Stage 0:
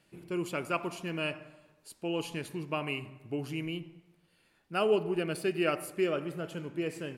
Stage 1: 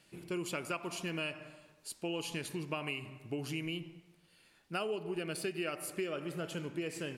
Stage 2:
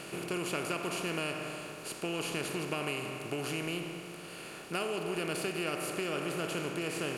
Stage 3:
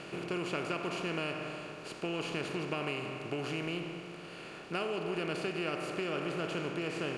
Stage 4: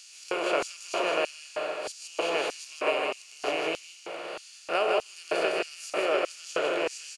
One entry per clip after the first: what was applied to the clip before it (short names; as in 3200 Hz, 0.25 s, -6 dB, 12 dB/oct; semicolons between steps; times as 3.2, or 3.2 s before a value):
bell 6200 Hz +6.5 dB 2.7 oct; compressor 6:1, threshold -34 dBFS, peak gain reduction 12 dB
per-bin compression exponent 0.4; gain -2.5 dB
air absorption 100 m
spectral swells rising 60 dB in 0.33 s; echo 0.157 s -3 dB; LFO high-pass square 1.6 Hz 570–5900 Hz; gain +5 dB